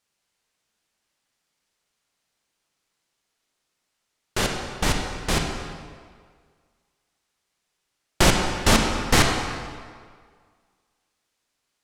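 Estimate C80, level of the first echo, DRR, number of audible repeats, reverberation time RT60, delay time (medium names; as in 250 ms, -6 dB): 4.5 dB, no echo, 2.0 dB, no echo, 1.8 s, no echo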